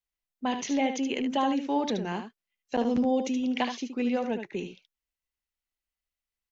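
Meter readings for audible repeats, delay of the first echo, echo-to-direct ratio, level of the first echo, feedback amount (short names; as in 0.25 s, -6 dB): 1, 74 ms, -8.0 dB, -8.0 dB, no steady repeat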